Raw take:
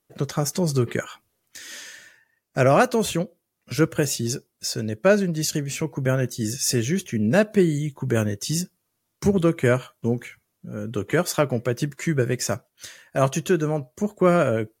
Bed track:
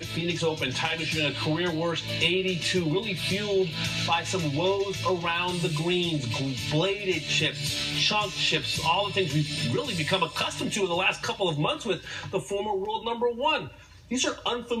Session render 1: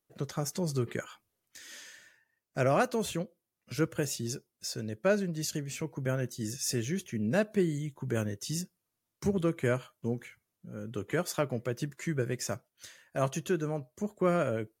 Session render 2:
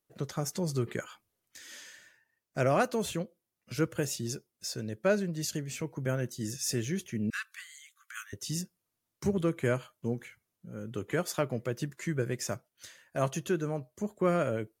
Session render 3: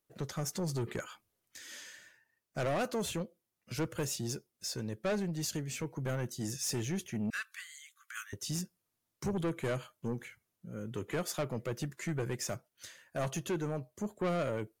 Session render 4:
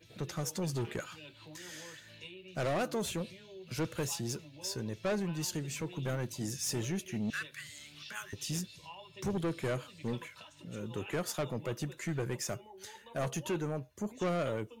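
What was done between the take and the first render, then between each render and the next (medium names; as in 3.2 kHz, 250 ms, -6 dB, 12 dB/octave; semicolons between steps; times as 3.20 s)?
trim -9.5 dB
7.30–8.33 s: brick-wall FIR high-pass 1.1 kHz
saturation -28.5 dBFS, distortion -9 dB
add bed track -25 dB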